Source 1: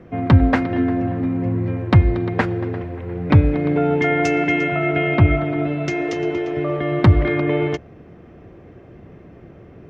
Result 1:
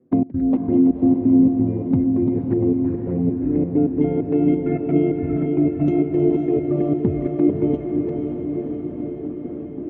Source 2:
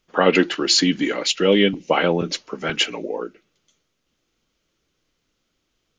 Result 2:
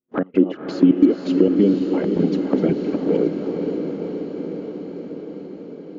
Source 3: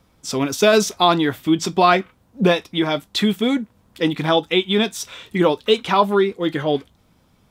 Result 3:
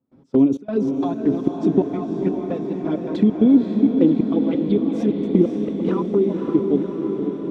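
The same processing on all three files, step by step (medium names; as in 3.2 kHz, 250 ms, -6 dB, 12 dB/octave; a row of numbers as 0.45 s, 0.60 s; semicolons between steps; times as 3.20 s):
chunks repeated in reverse 176 ms, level -12 dB; compression 16:1, threshold -25 dBFS; band-pass filter 270 Hz, Q 2.1; trance gate ".x.xx.xx" 132 bpm -24 dB; touch-sensitive flanger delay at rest 8.1 ms, full sweep at -32.5 dBFS; on a send: echo that smears into a reverb 534 ms, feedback 71%, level -5.5 dB; on the sum: normalise loudness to -20 LUFS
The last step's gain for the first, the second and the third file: +16.5 dB, +20.0 dB, +18.0 dB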